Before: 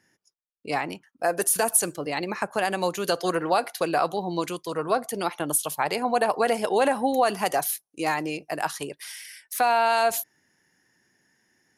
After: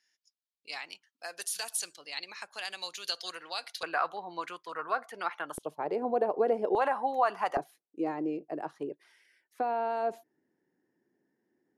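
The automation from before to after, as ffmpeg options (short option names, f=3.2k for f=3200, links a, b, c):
-af "asetnsamples=n=441:p=0,asendcmd='3.83 bandpass f 1500;5.58 bandpass f 390;6.75 bandpass f 1100;7.57 bandpass f 350',bandpass=f=4.1k:t=q:w=1.7:csg=0"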